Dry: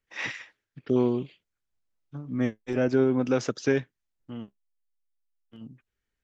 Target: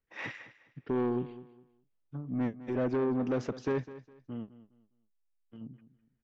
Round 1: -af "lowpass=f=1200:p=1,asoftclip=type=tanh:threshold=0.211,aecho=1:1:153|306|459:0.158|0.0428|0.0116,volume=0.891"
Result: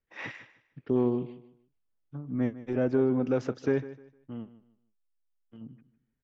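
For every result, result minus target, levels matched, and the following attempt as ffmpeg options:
saturation: distortion -13 dB; echo 52 ms early
-af "lowpass=f=1200:p=1,asoftclip=type=tanh:threshold=0.0631,aecho=1:1:153|306|459:0.158|0.0428|0.0116,volume=0.891"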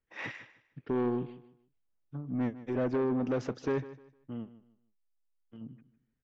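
echo 52 ms early
-af "lowpass=f=1200:p=1,asoftclip=type=tanh:threshold=0.0631,aecho=1:1:205|410|615:0.158|0.0428|0.0116,volume=0.891"

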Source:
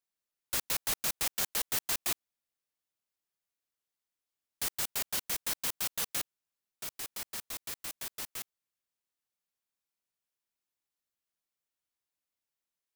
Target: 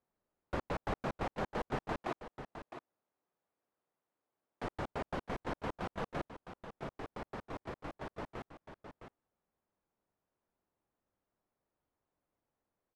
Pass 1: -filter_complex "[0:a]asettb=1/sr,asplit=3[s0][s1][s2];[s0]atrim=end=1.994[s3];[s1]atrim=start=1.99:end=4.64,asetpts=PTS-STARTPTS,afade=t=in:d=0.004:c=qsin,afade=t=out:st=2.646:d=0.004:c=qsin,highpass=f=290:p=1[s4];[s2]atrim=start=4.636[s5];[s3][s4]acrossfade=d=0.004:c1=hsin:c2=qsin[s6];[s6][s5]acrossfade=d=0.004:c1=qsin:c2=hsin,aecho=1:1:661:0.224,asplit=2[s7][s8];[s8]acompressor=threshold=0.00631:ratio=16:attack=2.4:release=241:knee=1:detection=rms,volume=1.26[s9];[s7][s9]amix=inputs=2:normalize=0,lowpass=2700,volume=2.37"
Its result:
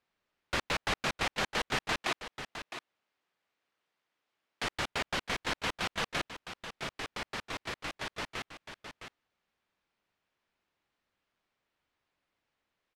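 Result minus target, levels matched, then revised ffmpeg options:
2 kHz band +5.5 dB
-filter_complex "[0:a]asettb=1/sr,asplit=3[s0][s1][s2];[s0]atrim=end=1.994[s3];[s1]atrim=start=1.99:end=4.64,asetpts=PTS-STARTPTS,afade=t=in:d=0.004:c=qsin,afade=t=out:st=2.646:d=0.004:c=qsin,highpass=f=290:p=1[s4];[s2]atrim=start=4.636[s5];[s3][s4]acrossfade=d=0.004:c1=hsin:c2=qsin[s6];[s6][s5]acrossfade=d=0.004:c1=qsin:c2=hsin,aecho=1:1:661:0.224,asplit=2[s7][s8];[s8]acompressor=threshold=0.00631:ratio=16:attack=2.4:release=241:knee=1:detection=rms,volume=1.26[s9];[s7][s9]amix=inputs=2:normalize=0,lowpass=870,volume=2.37"

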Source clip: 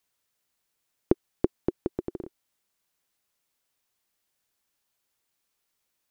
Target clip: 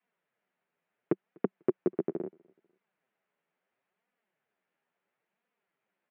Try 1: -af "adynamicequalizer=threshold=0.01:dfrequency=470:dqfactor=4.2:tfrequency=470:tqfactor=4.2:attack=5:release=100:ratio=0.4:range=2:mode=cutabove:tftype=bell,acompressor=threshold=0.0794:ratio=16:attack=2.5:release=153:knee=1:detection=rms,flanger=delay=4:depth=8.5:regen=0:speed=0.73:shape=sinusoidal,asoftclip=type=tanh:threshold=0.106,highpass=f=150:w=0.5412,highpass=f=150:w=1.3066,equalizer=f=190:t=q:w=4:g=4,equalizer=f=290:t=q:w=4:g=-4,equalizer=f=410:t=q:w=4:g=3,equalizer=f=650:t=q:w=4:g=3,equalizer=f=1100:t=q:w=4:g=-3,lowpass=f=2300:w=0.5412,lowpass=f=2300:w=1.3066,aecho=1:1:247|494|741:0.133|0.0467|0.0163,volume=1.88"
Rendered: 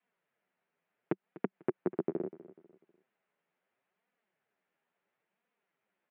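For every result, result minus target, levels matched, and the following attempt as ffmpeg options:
echo-to-direct +11.5 dB; compression: peak gain reduction +7 dB
-af "adynamicequalizer=threshold=0.01:dfrequency=470:dqfactor=4.2:tfrequency=470:tqfactor=4.2:attack=5:release=100:ratio=0.4:range=2:mode=cutabove:tftype=bell,acompressor=threshold=0.0794:ratio=16:attack=2.5:release=153:knee=1:detection=rms,flanger=delay=4:depth=8.5:regen=0:speed=0.73:shape=sinusoidal,asoftclip=type=tanh:threshold=0.106,highpass=f=150:w=0.5412,highpass=f=150:w=1.3066,equalizer=f=190:t=q:w=4:g=4,equalizer=f=290:t=q:w=4:g=-4,equalizer=f=410:t=q:w=4:g=3,equalizer=f=650:t=q:w=4:g=3,equalizer=f=1100:t=q:w=4:g=-3,lowpass=f=2300:w=0.5412,lowpass=f=2300:w=1.3066,aecho=1:1:247|494:0.0355|0.0124,volume=1.88"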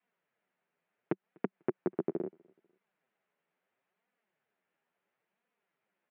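compression: peak gain reduction +7 dB
-af "adynamicequalizer=threshold=0.01:dfrequency=470:dqfactor=4.2:tfrequency=470:tqfactor=4.2:attack=5:release=100:ratio=0.4:range=2:mode=cutabove:tftype=bell,acompressor=threshold=0.188:ratio=16:attack=2.5:release=153:knee=1:detection=rms,flanger=delay=4:depth=8.5:regen=0:speed=0.73:shape=sinusoidal,asoftclip=type=tanh:threshold=0.106,highpass=f=150:w=0.5412,highpass=f=150:w=1.3066,equalizer=f=190:t=q:w=4:g=4,equalizer=f=290:t=q:w=4:g=-4,equalizer=f=410:t=q:w=4:g=3,equalizer=f=650:t=q:w=4:g=3,equalizer=f=1100:t=q:w=4:g=-3,lowpass=f=2300:w=0.5412,lowpass=f=2300:w=1.3066,aecho=1:1:247|494:0.0355|0.0124,volume=1.88"

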